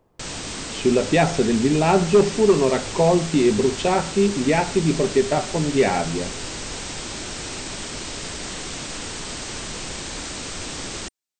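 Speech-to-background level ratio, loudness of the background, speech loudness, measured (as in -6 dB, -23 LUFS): 10.0 dB, -30.0 LUFS, -20.0 LUFS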